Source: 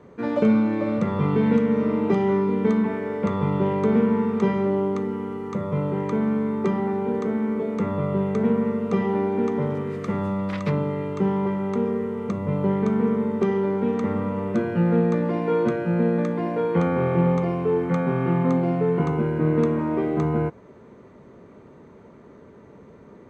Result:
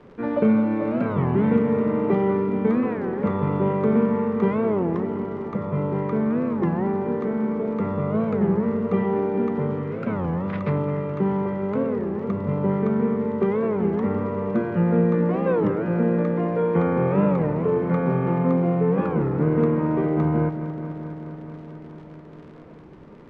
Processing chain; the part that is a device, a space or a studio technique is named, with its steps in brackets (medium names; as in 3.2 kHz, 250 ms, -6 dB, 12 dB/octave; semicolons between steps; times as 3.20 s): warped LP (warped record 33 1/3 rpm, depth 250 cents; crackle 83 per s -35 dBFS; pink noise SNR 34 dB); low-pass 2.3 kHz 12 dB/octave; bucket-brigade echo 213 ms, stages 4096, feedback 79%, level -13 dB